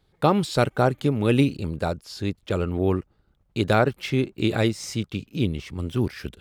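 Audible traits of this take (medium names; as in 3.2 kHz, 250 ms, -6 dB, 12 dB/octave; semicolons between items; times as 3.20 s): noise floor -66 dBFS; spectral tilt -6.0 dB/octave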